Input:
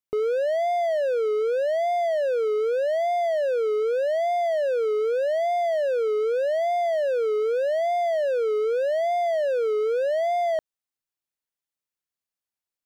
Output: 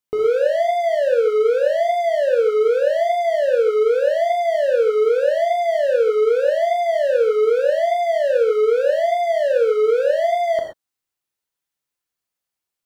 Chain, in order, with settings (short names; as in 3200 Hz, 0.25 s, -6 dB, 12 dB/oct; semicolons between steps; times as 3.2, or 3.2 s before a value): non-linear reverb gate 0.15 s flat, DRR 1 dB; gain +4 dB